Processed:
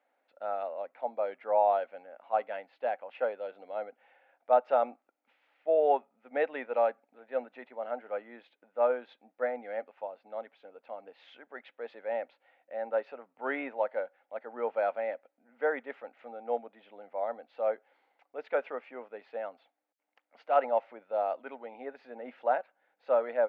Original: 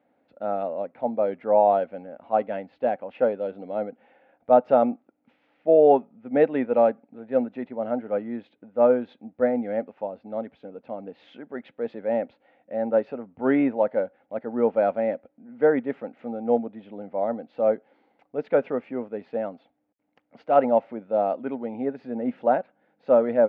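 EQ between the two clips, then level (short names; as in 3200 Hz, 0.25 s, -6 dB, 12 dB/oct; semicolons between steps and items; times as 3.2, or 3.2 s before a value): HPF 650 Hz 12 dB/oct; tilt shelf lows -5 dB, about 1500 Hz; high shelf 2800 Hz -9 dB; 0.0 dB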